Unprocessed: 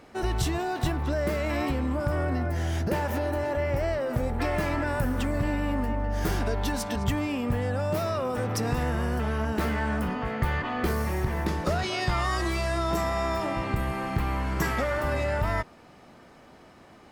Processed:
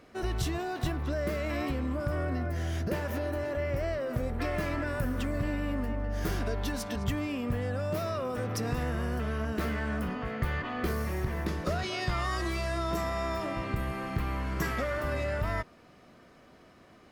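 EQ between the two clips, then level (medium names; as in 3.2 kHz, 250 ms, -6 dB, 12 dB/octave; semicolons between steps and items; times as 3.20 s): peaking EQ 8.1 kHz -3 dB 0.32 oct; band-stop 850 Hz, Q 5.4; -4.0 dB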